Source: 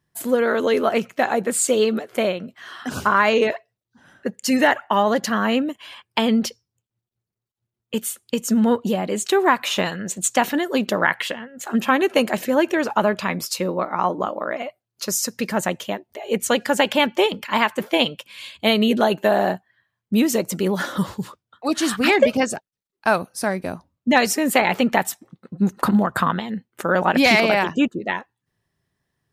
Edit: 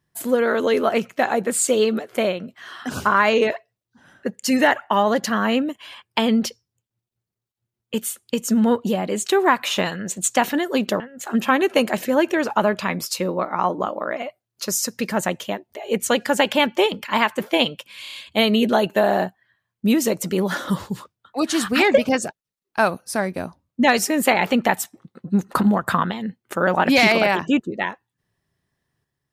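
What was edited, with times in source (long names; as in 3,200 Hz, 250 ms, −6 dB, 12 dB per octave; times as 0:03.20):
0:11.00–0:11.40: remove
0:18.42: stutter 0.03 s, 5 plays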